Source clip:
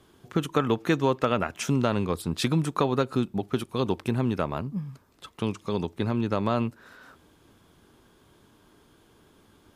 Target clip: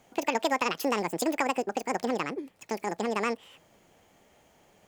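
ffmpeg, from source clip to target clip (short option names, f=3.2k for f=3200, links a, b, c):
-af "asetrate=88200,aresample=44100,volume=-3dB"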